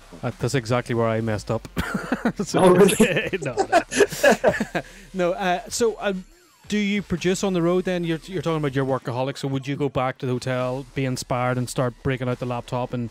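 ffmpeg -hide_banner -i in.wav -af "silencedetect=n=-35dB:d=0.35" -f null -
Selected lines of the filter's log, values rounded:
silence_start: 6.22
silence_end: 6.70 | silence_duration: 0.48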